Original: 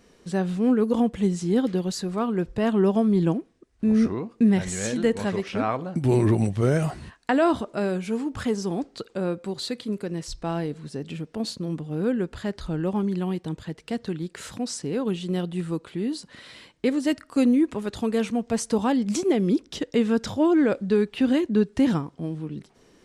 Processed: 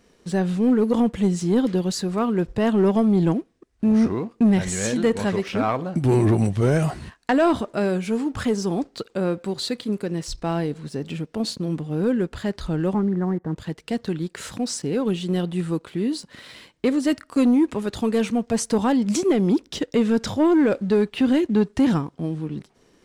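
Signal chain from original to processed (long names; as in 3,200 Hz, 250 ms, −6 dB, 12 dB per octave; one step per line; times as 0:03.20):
0:12.94–0:13.56: Butterworth low-pass 2,000 Hz 96 dB per octave
leveller curve on the samples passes 1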